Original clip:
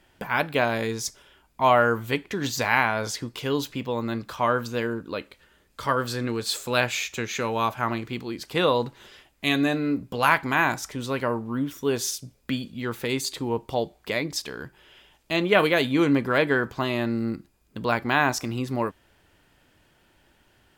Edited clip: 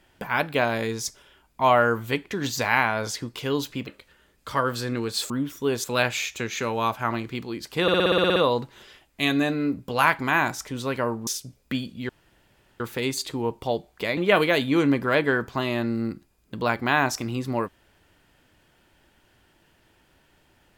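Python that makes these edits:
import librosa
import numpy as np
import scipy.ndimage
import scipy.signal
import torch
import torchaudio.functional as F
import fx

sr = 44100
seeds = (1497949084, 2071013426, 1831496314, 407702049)

y = fx.edit(x, sr, fx.cut(start_s=3.87, length_s=1.32),
    fx.stutter(start_s=8.6, slice_s=0.06, count=10),
    fx.move(start_s=11.51, length_s=0.54, to_s=6.62),
    fx.insert_room_tone(at_s=12.87, length_s=0.71),
    fx.cut(start_s=14.24, length_s=1.16), tone=tone)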